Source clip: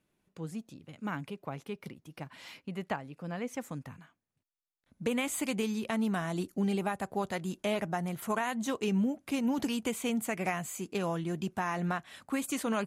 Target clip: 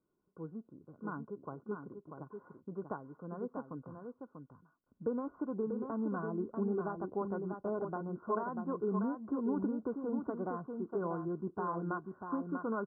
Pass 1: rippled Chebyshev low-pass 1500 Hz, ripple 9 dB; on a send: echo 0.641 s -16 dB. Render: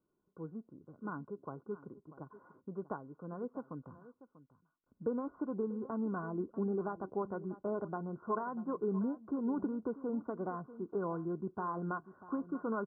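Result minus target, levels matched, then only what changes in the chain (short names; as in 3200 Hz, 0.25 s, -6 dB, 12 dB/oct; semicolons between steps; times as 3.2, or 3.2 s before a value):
echo-to-direct -10 dB
change: echo 0.641 s -6 dB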